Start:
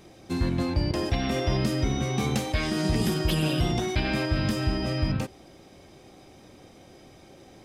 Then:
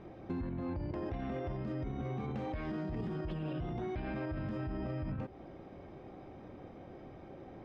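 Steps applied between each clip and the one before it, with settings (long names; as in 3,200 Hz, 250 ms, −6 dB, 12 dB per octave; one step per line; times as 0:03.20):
low-pass filter 1,500 Hz 12 dB per octave
brickwall limiter −26 dBFS, peak gain reduction 11.5 dB
downward compressor 2.5 to 1, threshold −39 dBFS, peak gain reduction 7 dB
level +1 dB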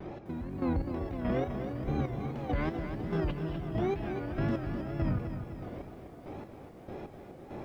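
square-wave tremolo 1.6 Hz, depth 65%, duty 30%
tape wow and flutter 140 cents
feedback echo at a low word length 253 ms, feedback 55%, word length 12 bits, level −8 dB
level +8.5 dB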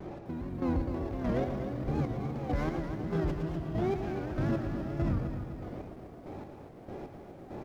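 running median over 15 samples
single-tap delay 114 ms −8.5 dB
wow of a warped record 78 rpm, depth 100 cents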